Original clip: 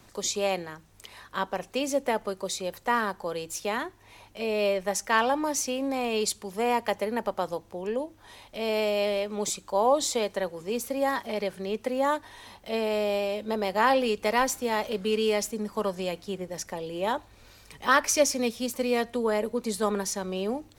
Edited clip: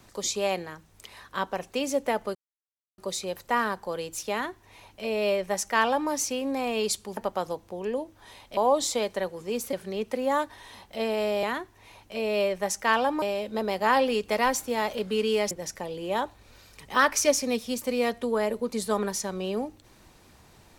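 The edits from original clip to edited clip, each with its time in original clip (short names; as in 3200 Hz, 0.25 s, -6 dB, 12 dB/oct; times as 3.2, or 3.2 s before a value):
2.35 insert silence 0.63 s
3.68–5.47 copy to 13.16
6.54–7.19 cut
8.59–9.77 cut
10.93–11.46 cut
15.45–16.43 cut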